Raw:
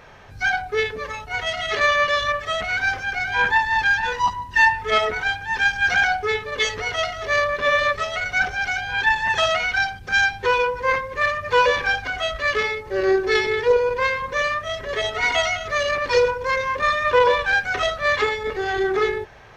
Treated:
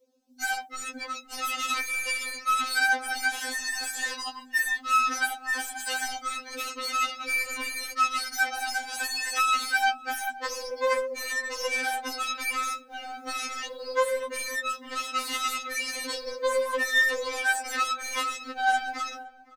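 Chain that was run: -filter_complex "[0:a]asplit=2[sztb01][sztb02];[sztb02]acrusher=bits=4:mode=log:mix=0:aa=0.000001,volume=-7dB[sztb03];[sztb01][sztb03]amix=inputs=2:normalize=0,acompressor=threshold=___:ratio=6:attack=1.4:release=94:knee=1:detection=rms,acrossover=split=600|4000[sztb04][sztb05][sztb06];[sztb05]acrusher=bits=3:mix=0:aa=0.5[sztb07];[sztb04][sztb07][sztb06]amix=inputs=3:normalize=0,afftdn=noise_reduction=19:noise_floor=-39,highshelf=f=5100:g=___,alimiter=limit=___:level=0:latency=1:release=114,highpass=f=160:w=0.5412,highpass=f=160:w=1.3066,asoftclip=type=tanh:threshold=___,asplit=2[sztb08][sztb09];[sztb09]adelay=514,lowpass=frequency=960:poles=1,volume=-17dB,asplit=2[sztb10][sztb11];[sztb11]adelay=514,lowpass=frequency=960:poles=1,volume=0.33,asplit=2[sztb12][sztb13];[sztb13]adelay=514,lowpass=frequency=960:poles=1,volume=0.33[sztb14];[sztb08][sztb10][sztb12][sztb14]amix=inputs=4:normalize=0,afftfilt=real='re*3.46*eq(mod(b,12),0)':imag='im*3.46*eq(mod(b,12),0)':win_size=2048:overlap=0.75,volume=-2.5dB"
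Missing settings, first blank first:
-16dB, 8, -12dB, -15dB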